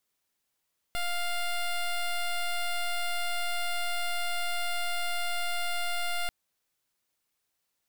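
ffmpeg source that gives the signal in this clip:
-f lavfi -i "aevalsrc='0.0335*(2*lt(mod(701*t,1),0.11)-1)':d=5.34:s=44100"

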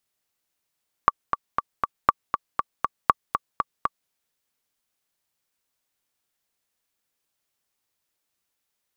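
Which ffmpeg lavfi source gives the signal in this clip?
-f lavfi -i "aevalsrc='pow(10,(-1.5-7*gte(mod(t,4*60/238),60/238))/20)*sin(2*PI*1150*mod(t,60/238))*exp(-6.91*mod(t,60/238)/0.03)':d=3.02:s=44100"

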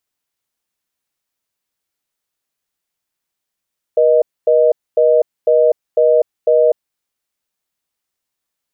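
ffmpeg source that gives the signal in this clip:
-f lavfi -i "aevalsrc='0.282*(sin(2*PI*480*t)+sin(2*PI*620*t))*clip(min(mod(t,0.5),0.25-mod(t,0.5))/0.005,0,1)':d=2.96:s=44100"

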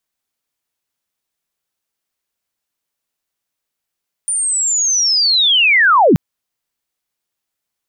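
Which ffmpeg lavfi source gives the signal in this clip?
-f lavfi -i "aevalsrc='pow(10,(-15+9*t/1.88)/20)*sin(2*PI*(9300*t-9180*t*t/(2*1.88)))':d=1.88:s=44100"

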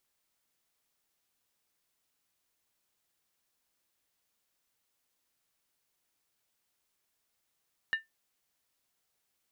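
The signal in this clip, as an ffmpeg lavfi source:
-f lavfi -i "aevalsrc='0.075*pow(10,-3*t/0.16)*sin(2*PI*1790*t)+0.0211*pow(10,-3*t/0.127)*sin(2*PI*2853.3*t)+0.00596*pow(10,-3*t/0.109)*sin(2*PI*3823.4*t)+0.00168*pow(10,-3*t/0.106)*sin(2*PI*4109.8*t)+0.000473*pow(10,-3*t/0.098)*sin(2*PI*4748.9*t)':d=0.63:s=44100"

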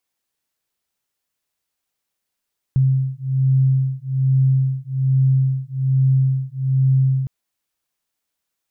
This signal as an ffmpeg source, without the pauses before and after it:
-f lavfi -i "aevalsrc='0.133*(sin(2*PI*132*t)+sin(2*PI*133.2*t))':d=4.51:s=44100"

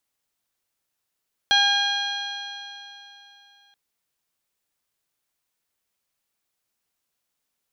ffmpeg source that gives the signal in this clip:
-f lavfi -i "aevalsrc='0.075*pow(10,-3*t/3.15)*sin(2*PI*805.76*t)+0.1*pow(10,-3*t/3.15)*sin(2*PI*1616.11*t)+0.0299*pow(10,-3*t/3.15)*sin(2*PI*2435.56*t)+0.141*pow(10,-3*t/3.15)*sin(2*PI*3268.58*t)+0.0708*pow(10,-3*t/3.15)*sin(2*PI*4119.48*t)+0.00841*pow(10,-3*t/3.15)*sin(2*PI*4992.45*t)+0.0211*pow(10,-3*t/3.15)*sin(2*PI*5891.47*t)':d=2.23:s=44100"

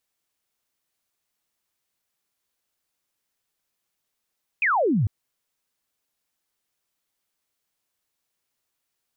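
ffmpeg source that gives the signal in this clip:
-f lavfi -i "aevalsrc='0.126*clip(t/0.002,0,1)*clip((0.45-t)/0.002,0,1)*sin(2*PI*2600*0.45/log(90/2600)*(exp(log(90/2600)*t/0.45)-1))':d=0.45:s=44100"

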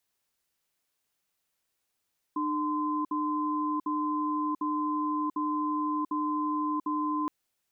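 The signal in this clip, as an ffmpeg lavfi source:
-f lavfi -i "aevalsrc='0.0335*(sin(2*PI*302*t)+sin(2*PI*1030*t))*clip(min(mod(t,0.75),0.69-mod(t,0.75))/0.005,0,1)':d=4.92:s=44100"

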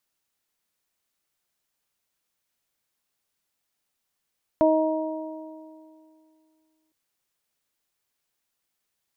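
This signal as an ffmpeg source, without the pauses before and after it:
-f lavfi -i "aevalsrc='0.106*pow(10,-3*t/2.56)*sin(2*PI*315*t)+0.158*pow(10,-3*t/1.99)*sin(2*PI*630*t)+0.0562*pow(10,-3*t/2.19)*sin(2*PI*945*t)':d=2.31:s=44100"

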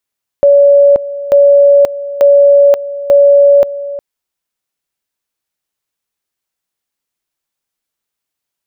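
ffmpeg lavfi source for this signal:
-f lavfi -i "aevalsrc='pow(10,(-2.5-15.5*gte(mod(t,0.89),0.53))/20)*sin(2*PI*567*t)':d=3.56:s=44100"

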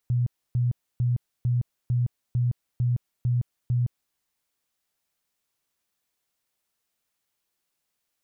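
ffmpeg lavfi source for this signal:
-f lavfi -i "aevalsrc='0.1*sin(2*PI*122*mod(t,0.45))*lt(mod(t,0.45),20/122)':d=4.05:s=44100"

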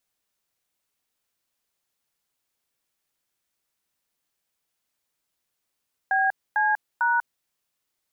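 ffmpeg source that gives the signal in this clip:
-f lavfi -i "aevalsrc='0.0841*clip(min(mod(t,0.449),0.193-mod(t,0.449))/0.002,0,1)*(eq(floor(t/0.449),0)*(sin(2*PI*770*mod(t,0.449))+sin(2*PI*1633*mod(t,0.449)))+eq(floor(t/0.449),1)*(sin(2*PI*852*mod(t,0.449))+sin(2*PI*1633*mod(t,0.449)))+eq(floor(t/0.449),2)*(sin(2*PI*941*mod(t,0.449))+sin(2*PI*1477*mod(t,0.449))))':d=1.347:s=44100"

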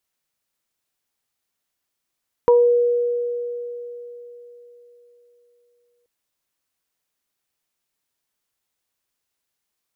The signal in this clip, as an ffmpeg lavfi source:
-f lavfi -i "aevalsrc='0.335*pow(10,-3*t/3.87)*sin(2*PI*481*t)+0.158*pow(10,-3*t/0.29)*sin(2*PI*962*t)':d=3.58:s=44100"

